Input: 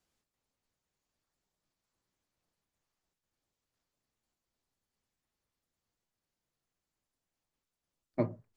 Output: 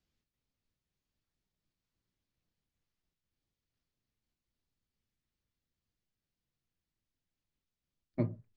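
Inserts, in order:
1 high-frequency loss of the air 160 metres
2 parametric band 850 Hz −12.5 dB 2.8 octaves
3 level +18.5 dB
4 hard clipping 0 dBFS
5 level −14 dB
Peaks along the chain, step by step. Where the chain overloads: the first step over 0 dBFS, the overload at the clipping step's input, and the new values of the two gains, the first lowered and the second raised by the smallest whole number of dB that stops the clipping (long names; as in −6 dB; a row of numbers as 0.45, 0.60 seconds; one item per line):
−16.5, −24.0, −5.5, −5.5, −19.5 dBFS
no step passes full scale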